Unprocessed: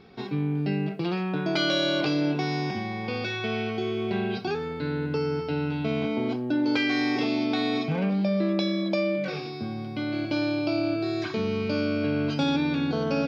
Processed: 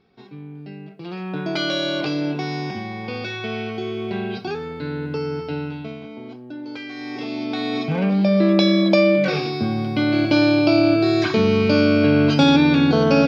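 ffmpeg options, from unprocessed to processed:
-af "volume=21dB,afade=t=in:st=0.96:d=0.43:silence=0.266073,afade=t=out:st=5.54:d=0.45:silence=0.298538,afade=t=in:st=6.95:d=0.76:silence=0.281838,afade=t=in:st=7.71:d=1.01:silence=0.375837"

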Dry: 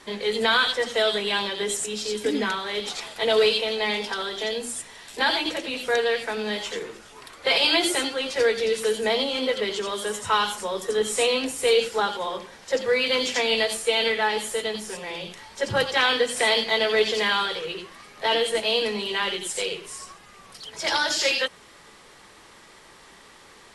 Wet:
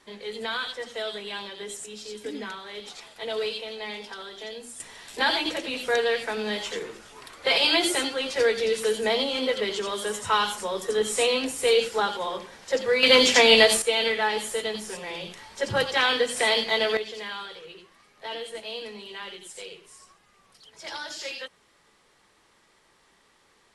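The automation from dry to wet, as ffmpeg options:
-af "asetnsamples=n=441:p=0,asendcmd='4.8 volume volume -1dB;13.03 volume volume 7dB;13.82 volume volume -1.5dB;16.97 volume volume -12.5dB',volume=-10dB"

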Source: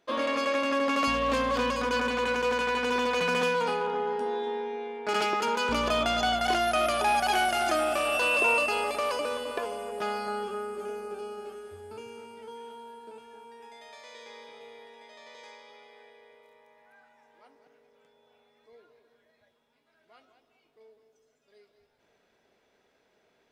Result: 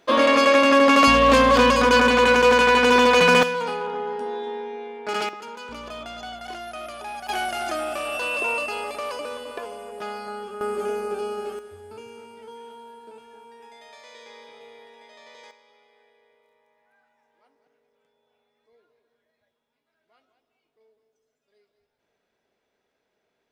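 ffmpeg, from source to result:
-af "asetnsamples=n=441:p=0,asendcmd='3.43 volume volume 1dB;5.29 volume volume -10dB;7.29 volume volume -1.5dB;10.61 volume volume 9dB;11.59 volume volume 1.5dB;15.51 volume volume -7dB',volume=11.5dB"

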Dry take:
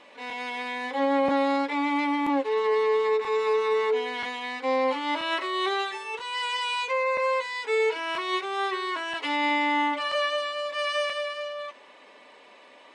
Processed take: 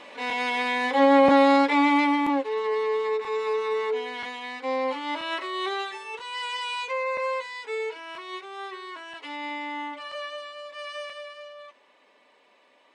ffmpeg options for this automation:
-af "volume=6.5dB,afade=t=out:st=1.8:d=0.69:silence=0.354813,afade=t=out:st=7.23:d=0.8:silence=0.473151"

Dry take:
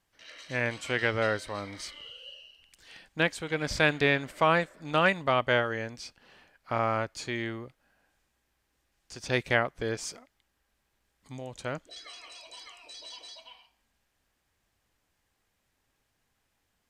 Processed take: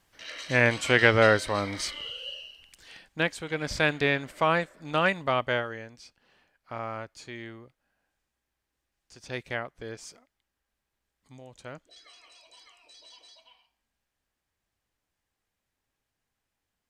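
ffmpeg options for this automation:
-af "volume=8dB,afade=t=out:st=2.37:d=0.69:silence=0.375837,afade=t=out:st=5.36:d=0.49:silence=0.446684"

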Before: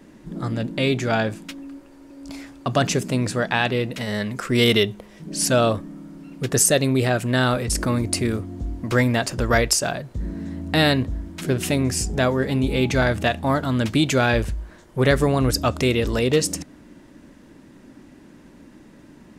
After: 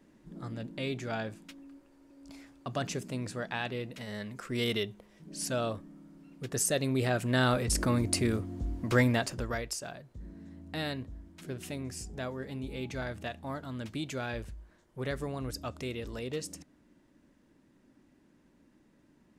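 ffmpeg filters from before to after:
-af "volume=-6dB,afade=t=in:st=6.5:d=1.08:silence=0.398107,afade=t=out:st=9.06:d=0.51:silence=0.266073"

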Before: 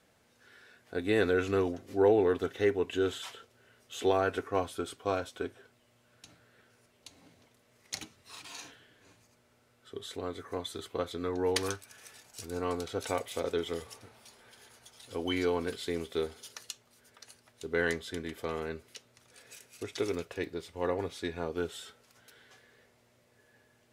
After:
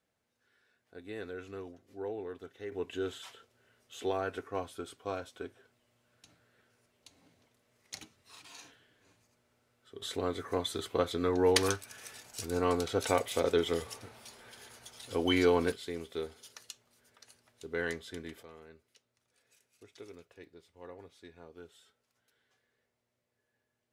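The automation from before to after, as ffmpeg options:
-af "asetnsamples=n=441:p=0,asendcmd='2.72 volume volume -6dB;10.02 volume volume 4dB;15.72 volume volume -5dB;18.43 volume volume -17dB',volume=-15dB"

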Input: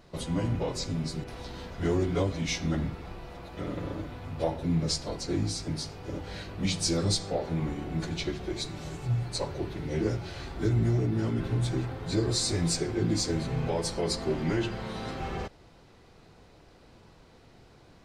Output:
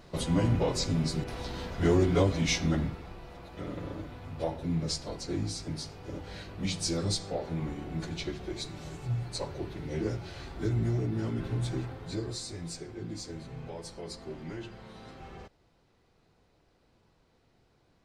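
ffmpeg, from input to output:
-af "volume=3dB,afade=t=out:st=2.51:d=0.57:silence=0.473151,afade=t=out:st=11.78:d=0.69:silence=0.375837"

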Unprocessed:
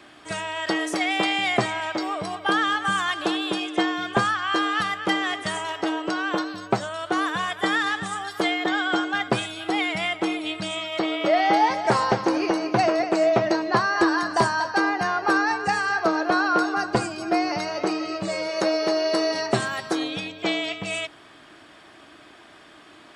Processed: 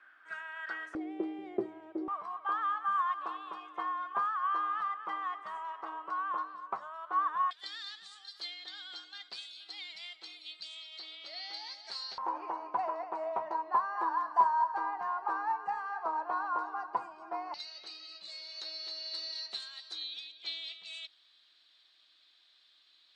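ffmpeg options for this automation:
-af "asetnsamples=n=441:p=0,asendcmd='0.95 bandpass f 360;2.08 bandpass f 1100;7.51 bandpass f 4300;12.18 bandpass f 970;17.54 bandpass f 4000',bandpass=f=1.5k:t=q:w=8.6:csg=0"

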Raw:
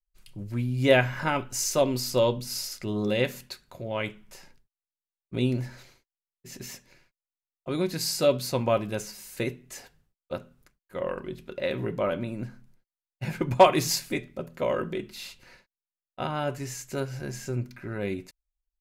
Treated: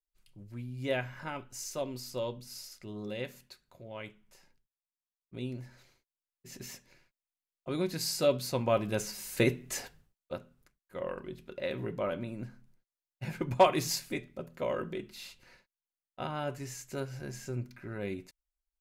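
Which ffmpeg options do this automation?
-af "volume=5.5dB,afade=t=in:st=5.66:d=0.91:silence=0.398107,afade=t=in:st=8.66:d=1.09:silence=0.316228,afade=t=out:st=9.75:d=0.61:silence=0.266073"

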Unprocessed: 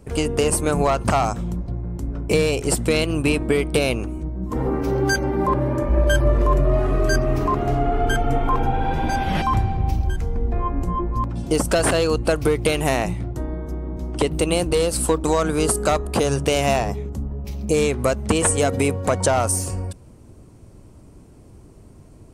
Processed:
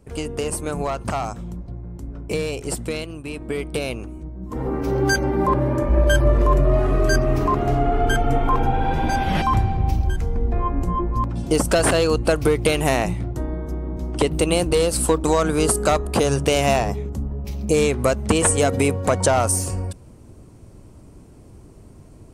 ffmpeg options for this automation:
-af "volume=9.5dB,afade=t=out:st=2.81:d=0.42:silence=0.375837,afade=t=in:st=3.23:d=0.38:silence=0.375837,afade=t=in:st=4.41:d=0.68:silence=0.446684"

